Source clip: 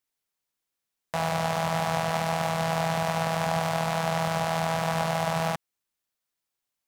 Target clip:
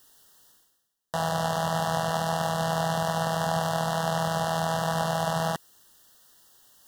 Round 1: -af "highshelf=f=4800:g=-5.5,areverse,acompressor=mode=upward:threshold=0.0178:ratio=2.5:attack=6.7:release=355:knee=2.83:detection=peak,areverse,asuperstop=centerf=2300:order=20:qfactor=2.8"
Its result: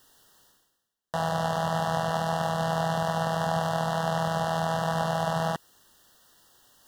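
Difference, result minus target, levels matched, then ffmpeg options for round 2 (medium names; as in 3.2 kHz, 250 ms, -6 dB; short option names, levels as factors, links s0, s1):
8 kHz band -5.0 dB
-af "highshelf=f=4800:g=2,areverse,acompressor=mode=upward:threshold=0.0178:ratio=2.5:attack=6.7:release=355:knee=2.83:detection=peak,areverse,asuperstop=centerf=2300:order=20:qfactor=2.8"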